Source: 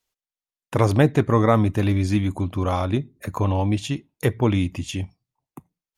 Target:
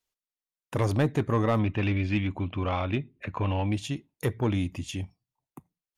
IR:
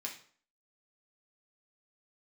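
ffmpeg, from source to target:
-filter_complex "[0:a]asettb=1/sr,asplit=3[link_01][link_02][link_03];[link_01]atrim=end=1.594[link_04];[link_02]atrim=start=1.59:end=3.73,asetpts=PTS-STARTPTS,afade=type=in:duration=0.004:curve=qsin,afade=type=out:start_time=2.136:duration=0.004:curve=qsin,lowpass=frequency=2700:width_type=q:width=3.4[link_05];[link_03]atrim=start=3.726[link_06];[link_04][link_05]acrossfade=duration=0.004:curve1=hsin:curve2=qsin[link_07];[link_07][link_06]acrossfade=duration=0.004:curve1=qsin:curve2=hsin,asoftclip=type=tanh:threshold=-10.5dB,volume=-5.5dB"

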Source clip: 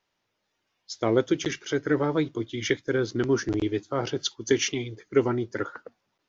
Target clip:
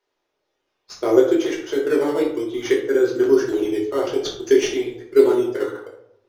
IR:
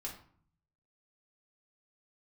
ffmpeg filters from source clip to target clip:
-filter_complex "[0:a]lowshelf=frequency=260:width_type=q:width=3:gain=-10.5,asplit=2[link_01][link_02];[link_02]acrusher=samples=12:mix=1:aa=0.000001:lfo=1:lforange=12:lforate=0.57,volume=-9.5dB[link_03];[link_01][link_03]amix=inputs=2:normalize=0[link_04];[1:a]atrim=start_sample=2205,asetrate=30429,aresample=44100[link_05];[link_04][link_05]afir=irnorm=-1:irlink=0,volume=-1dB"

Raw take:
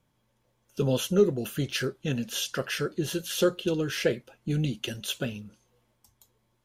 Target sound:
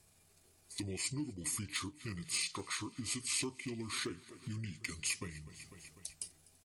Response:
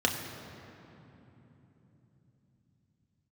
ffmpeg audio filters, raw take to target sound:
-filter_complex "[0:a]highshelf=frequency=5500:gain=4,asetrate=32097,aresample=44100,atempo=1.37395,asplit=2[link_01][link_02];[link_02]aecho=0:1:249|498|747|996:0.0708|0.0396|0.0222|0.0124[link_03];[link_01][link_03]amix=inputs=2:normalize=0,acompressor=threshold=-49dB:ratio=2.5,asoftclip=type=hard:threshold=-32.5dB,aemphasis=mode=production:type=75kf,volume=1dB"

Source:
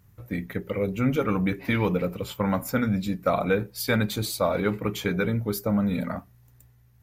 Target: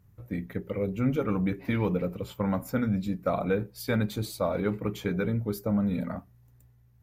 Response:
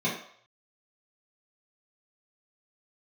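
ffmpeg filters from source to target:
-af "tiltshelf=frequency=970:gain=3.5,volume=-5.5dB"

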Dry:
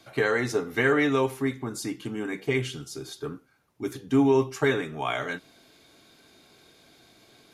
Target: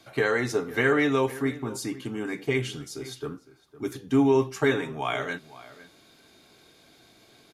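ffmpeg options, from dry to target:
ffmpeg -i in.wav -filter_complex "[0:a]asplit=2[link_01][link_02];[link_02]adelay=507.3,volume=-17dB,highshelf=frequency=4000:gain=-11.4[link_03];[link_01][link_03]amix=inputs=2:normalize=0" out.wav

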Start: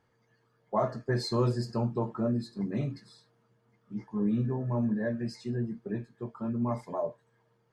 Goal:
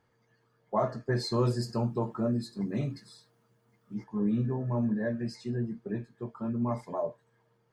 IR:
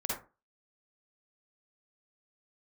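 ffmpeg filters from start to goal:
-filter_complex "[0:a]asettb=1/sr,asplit=3[link_01][link_02][link_03];[link_01]atrim=end=1.454[link_04];[link_02]atrim=start=1.45:end=4.04,asetpts=PTS-STARTPTS,afade=type=in:duration=0.004:curve=qsin,afade=type=out:start_time=2.586:duration=0.004:curve=qsin,highshelf=frequency=7200:gain=10.5[link_05];[link_03]atrim=start=4.036[link_06];[link_04][link_05]acrossfade=duration=0.004:curve1=hsin:curve2=qsin[link_07];[link_07][link_06]acrossfade=duration=0.004:curve1=qsin:curve2=hsin"

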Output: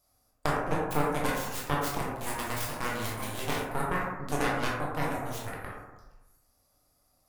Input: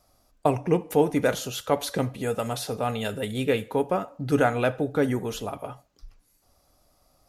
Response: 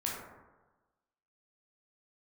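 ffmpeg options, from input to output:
-filter_complex "[0:a]acompressor=threshold=-25dB:ratio=2,crystalizer=i=1.5:c=0,asettb=1/sr,asplit=3[link_01][link_02][link_03];[link_01]atrim=end=2.014[link_04];[link_02]atrim=start=2.01:end=3.65,asetpts=PTS-STARTPTS,afade=type=in:duration=0.004:curve=qsin,afade=type=out:start_time=1.636:duration=0.004:curve=qsin,acrusher=bits=4:mix=0:aa=0.5[link_05];[link_03]atrim=start=3.646[link_06];[link_04][link_05]acrossfade=duration=0.004:curve1=hsin:curve2=qsin[link_07];[link_07][link_06]acrossfade=duration=0.004:curve1=qsin:curve2=hsin,aeval=exprs='0.316*(cos(1*acos(clip(val(0)/0.316,-1,1)))-cos(1*PI/2))+0.0631*(cos(3*acos(clip(val(0)/0.316,-1,1)))-cos(3*PI/2))+0.0398*(cos(6*acos(clip(val(0)/0.316,-1,1)))-cos(6*PI/2))+0.0316*(cos(7*acos(clip(val(0)/0.316,-1,1)))-cos(7*PI/2))':channel_layout=same[link_08];[1:a]atrim=start_sample=2205,asetrate=48510,aresample=44100[link_09];[link_08][link_09]afir=irnorm=-1:irlink=0"

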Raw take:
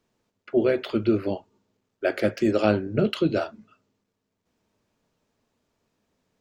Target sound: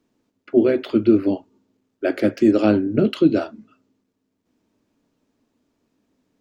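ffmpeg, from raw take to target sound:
ffmpeg -i in.wav -af "equalizer=frequency=280:width=2.1:gain=12.5" out.wav

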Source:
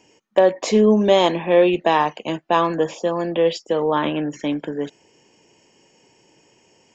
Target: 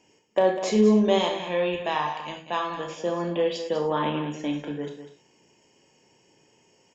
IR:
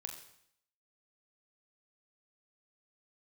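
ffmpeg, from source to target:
-filter_complex "[0:a]asettb=1/sr,asplit=3[link_01][link_02][link_03];[link_01]atrim=end=1.184[link_04];[link_02]atrim=start=1.18:end=2.9,asetpts=PTS-STARTPTS,afade=type=in:duration=0.004:curve=qsin,afade=type=out:start_time=1.716:duration=0.004:curve=qsin,equalizer=frequency=330:width=0.54:gain=-9[link_05];[link_03]atrim=start=2.896[link_06];[link_04][link_05]acrossfade=duration=0.004:curve1=hsin:curve2=qsin[link_07];[link_07][link_06]acrossfade=duration=0.004:curve1=qsin:curve2=hsin,aecho=1:1:198:0.299[link_08];[1:a]atrim=start_sample=2205,afade=type=out:start_time=0.21:duration=0.01,atrim=end_sample=9702,asetrate=57330,aresample=44100[link_09];[link_08][link_09]afir=irnorm=-1:irlink=0"

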